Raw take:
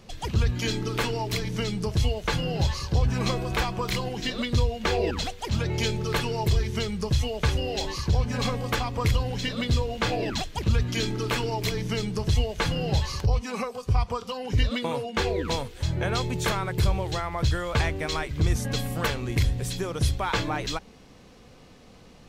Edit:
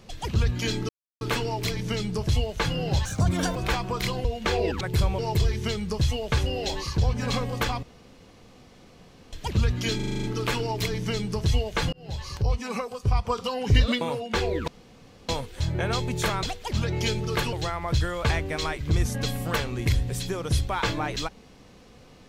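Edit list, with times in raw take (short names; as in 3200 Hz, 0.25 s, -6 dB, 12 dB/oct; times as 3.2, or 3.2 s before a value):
0.89 insert silence 0.32 s
2.73–3.44 speed 140%
4.13–4.64 cut
5.2–6.3 swap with 16.65–17.03
8.94–10.44 room tone
11.07 stutter 0.04 s, 8 plays
12.76–13.39 fade in
14.13–14.82 gain +4 dB
15.51 insert room tone 0.61 s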